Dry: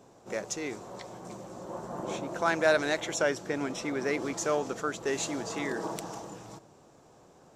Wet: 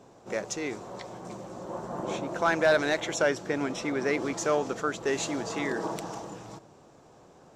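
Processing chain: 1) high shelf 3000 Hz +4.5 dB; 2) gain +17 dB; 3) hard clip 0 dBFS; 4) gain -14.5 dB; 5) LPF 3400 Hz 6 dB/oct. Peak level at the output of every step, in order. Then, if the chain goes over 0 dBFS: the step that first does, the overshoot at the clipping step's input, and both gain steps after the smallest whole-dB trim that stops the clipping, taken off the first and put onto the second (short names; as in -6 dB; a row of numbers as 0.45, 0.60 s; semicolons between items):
-9.5, +7.5, 0.0, -14.5, -14.5 dBFS; step 2, 7.5 dB; step 2 +9 dB, step 4 -6.5 dB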